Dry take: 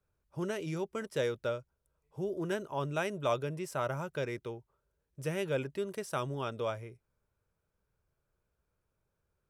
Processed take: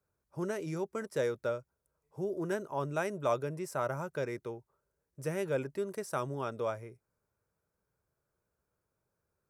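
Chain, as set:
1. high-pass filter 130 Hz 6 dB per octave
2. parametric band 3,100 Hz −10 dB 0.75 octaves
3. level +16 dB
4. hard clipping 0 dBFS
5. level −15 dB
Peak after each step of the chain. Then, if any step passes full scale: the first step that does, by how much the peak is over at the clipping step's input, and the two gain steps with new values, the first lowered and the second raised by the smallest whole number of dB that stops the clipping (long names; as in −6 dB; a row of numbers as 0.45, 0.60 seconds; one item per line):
−18.5, −19.0, −3.0, −3.0, −18.0 dBFS
no step passes full scale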